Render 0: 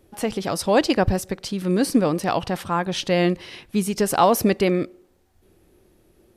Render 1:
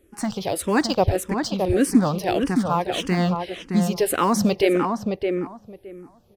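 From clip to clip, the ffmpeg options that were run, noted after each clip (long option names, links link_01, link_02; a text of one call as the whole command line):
ffmpeg -i in.wav -filter_complex "[0:a]asplit=2[link_01][link_02];[link_02]acrusher=bits=4:mix=0:aa=0.5,volume=-9.5dB[link_03];[link_01][link_03]amix=inputs=2:normalize=0,asplit=2[link_04][link_05];[link_05]adelay=617,lowpass=frequency=1700:poles=1,volume=-4.5dB,asplit=2[link_06][link_07];[link_07]adelay=617,lowpass=frequency=1700:poles=1,volume=0.17,asplit=2[link_08][link_09];[link_09]adelay=617,lowpass=frequency=1700:poles=1,volume=0.17[link_10];[link_04][link_06][link_08][link_10]amix=inputs=4:normalize=0,asplit=2[link_11][link_12];[link_12]afreqshift=-1.7[link_13];[link_11][link_13]amix=inputs=2:normalize=1" out.wav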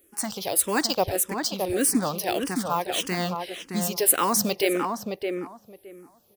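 ffmpeg -i in.wav -af "aemphasis=mode=production:type=bsi,volume=-3dB" out.wav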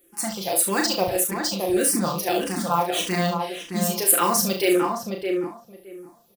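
ffmpeg -i in.wav -filter_complex "[0:a]aecho=1:1:5.8:0.65,asplit=2[link_01][link_02];[link_02]aecho=0:1:36|69:0.596|0.335[link_03];[link_01][link_03]amix=inputs=2:normalize=0,volume=-1dB" out.wav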